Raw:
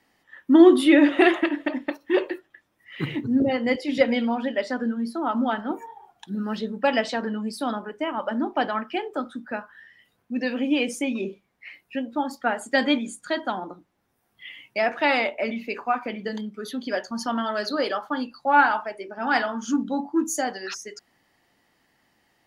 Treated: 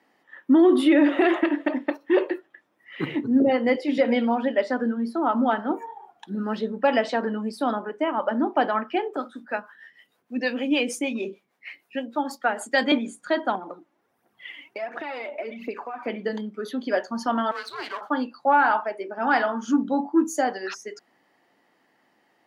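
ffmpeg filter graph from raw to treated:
ffmpeg -i in.wav -filter_complex "[0:a]asettb=1/sr,asplit=3[link_01][link_02][link_03];[link_01]atrim=end=9.164[link_04];[link_02]atrim=start=9.16:end=12.92,asetpts=PTS-STARTPTS,afade=type=in:duration=0.004:curve=qsin,afade=type=out:start_time=3.756:duration=0.004:curve=qsin,highshelf=frequency=2700:gain=10.5,acrossover=split=400[link_05][link_06];[link_05]aeval=exprs='val(0)*(1-0.7/2+0.7/2*cos(2*PI*6.5*n/s))':channel_layout=same[link_07];[link_06]aeval=exprs='val(0)*(1-0.7/2-0.7/2*cos(2*PI*6.5*n/s))':channel_layout=same[link_08];[link_07][link_08]amix=inputs=2:normalize=0[link_09];[link_03]atrim=start=12.916[link_10];[link_04][link_09]acrossfade=duration=0.004:curve1=hsin:curve2=qsin[link_11];[link_11][link_10]acrossfade=duration=0.004:curve1=qsin:curve2=hsin,asettb=1/sr,asplit=3[link_12][link_13][link_14];[link_12]atrim=end=13.554[link_15];[link_13]atrim=start=13.55:end=16.07,asetpts=PTS-STARTPTS,afade=type=in:duration=0.004:curve=qsin,afade=type=out:start_time=2.516:duration=0.004:curve=qsin,acompressor=threshold=-34dB:ratio=6:attack=3.2:release=140:knee=1:detection=peak,aphaser=in_gain=1:out_gain=1:delay=3.7:decay=0.55:speed=1.4:type=triangular[link_16];[link_14]atrim=start=16.066[link_17];[link_15][link_16]acrossfade=duration=0.004:curve1=hsin:curve2=qsin[link_18];[link_18][link_17]acrossfade=duration=0.004:curve1=qsin:curve2=hsin,asettb=1/sr,asplit=3[link_19][link_20][link_21];[link_19]atrim=end=17.514[link_22];[link_20]atrim=start=17.51:end=18.01,asetpts=PTS-STARTPTS,afade=type=in:duration=0.004:curve=qsin,afade=type=out:start_time=0.496:duration=0.004:curve=qsin,aeval=exprs='if(lt(val(0),0),0.251*val(0),val(0))':channel_layout=same,highpass=1200,afreqshift=-180[link_23];[link_21]atrim=start=18.006[link_24];[link_22][link_23]acrossfade=duration=0.004:curve1=hsin:curve2=qsin[link_25];[link_25][link_24]acrossfade=duration=0.004:curve1=qsin:curve2=hsin,highpass=250,highshelf=frequency=2600:gain=-11.5,alimiter=level_in=13.5dB:limit=-1dB:release=50:level=0:latency=1,volume=-9dB" out.wav

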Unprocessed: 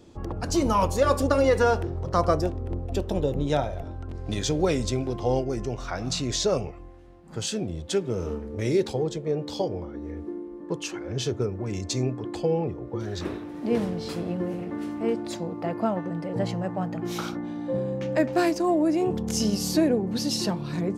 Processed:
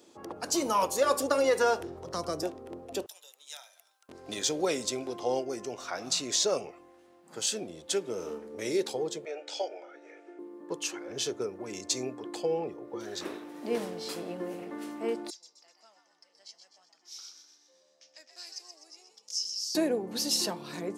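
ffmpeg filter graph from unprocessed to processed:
ffmpeg -i in.wav -filter_complex "[0:a]asettb=1/sr,asplit=3[link_01][link_02][link_03];[link_01]atrim=end=1.804[link_04];[link_02]atrim=start=1.8:end=2.43,asetpts=PTS-STARTPTS,afade=type=in:duration=0.004:curve=qsin,afade=type=out:start_time=0.626:duration=0.004:curve=qsin,lowshelf=frequency=110:gain=10,acrossover=split=330|3000[link_05][link_06][link_07];[link_06]acompressor=threshold=-36dB:ratio=2:attack=3.2:release=140:knee=2.83:detection=peak[link_08];[link_05][link_08][link_07]amix=inputs=3:normalize=0[link_09];[link_03]atrim=start=2.426[link_10];[link_04][link_09]acrossfade=duration=0.004:curve1=hsin:curve2=qsin[link_11];[link_11][link_10]acrossfade=duration=0.004:curve1=qsin:curve2=hsin,asettb=1/sr,asplit=3[link_12][link_13][link_14];[link_12]atrim=end=3.064[link_15];[link_13]atrim=start=3.06:end=4.09,asetpts=PTS-STARTPTS,afade=type=in:duration=0.004:curve=qsin,afade=type=out:start_time=1.026:duration=0.004:curve=qsin,highpass=900,aderivative[link_16];[link_14]atrim=start=4.086[link_17];[link_15][link_16]acrossfade=duration=0.004:curve1=hsin:curve2=qsin[link_18];[link_18][link_17]acrossfade=duration=0.004:curve1=qsin:curve2=hsin,asettb=1/sr,asplit=3[link_19][link_20][link_21];[link_19]atrim=end=9.254[link_22];[link_20]atrim=start=9.25:end=10.39,asetpts=PTS-STARTPTS,afade=type=in:duration=0.004:curve=qsin,afade=type=out:start_time=1.136:duration=0.004:curve=qsin,asuperstop=centerf=1100:order=8:qfactor=5.4,highpass=frequency=430:width=0.5412,highpass=frequency=430:width=1.3066,equalizer=frequency=470:width_type=q:width=4:gain=-7,equalizer=frequency=660:width_type=q:width=4:gain=5,equalizer=frequency=950:width_type=q:width=4:gain=-6,equalizer=frequency=1400:width_type=q:width=4:gain=6,equalizer=frequency=2400:width_type=q:width=4:gain=10,equalizer=frequency=4200:width_type=q:width=4:gain=-5,lowpass=frequency=7800:width=0.5412,lowpass=frequency=7800:width=1.3066[link_23];[link_21]atrim=start=10.386[link_24];[link_22][link_23]acrossfade=duration=0.004:curve1=hsin:curve2=qsin[link_25];[link_25][link_24]acrossfade=duration=0.004:curve1=qsin:curve2=hsin,asettb=1/sr,asplit=3[link_26][link_27][link_28];[link_26]atrim=end=15.304[link_29];[link_27]atrim=start=15.3:end=19.75,asetpts=PTS-STARTPTS,afade=type=in:duration=0.004:curve=qsin,afade=type=out:start_time=4.446:duration=0.004:curve=qsin,bandpass=frequency=5300:width_type=q:width=5.2,asplit=7[link_30][link_31][link_32][link_33][link_34][link_35][link_36];[link_31]adelay=126,afreqshift=74,volume=-8dB[link_37];[link_32]adelay=252,afreqshift=148,volume=-13.8dB[link_38];[link_33]adelay=378,afreqshift=222,volume=-19.7dB[link_39];[link_34]adelay=504,afreqshift=296,volume=-25.5dB[link_40];[link_35]adelay=630,afreqshift=370,volume=-31.4dB[link_41];[link_36]adelay=756,afreqshift=444,volume=-37.2dB[link_42];[link_30][link_37][link_38][link_39][link_40][link_41][link_42]amix=inputs=7:normalize=0,atrim=end_sample=196245[link_43];[link_28]atrim=start=19.746[link_44];[link_29][link_43]acrossfade=duration=0.004:curve1=hsin:curve2=qsin[link_45];[link_45][link_44]acrossfade=duration=0.004:curve1=qsin:curve2=hsin,highpass=340,highshelf=frequency=5500:gain=10,volume=-3.5dB" out.wav

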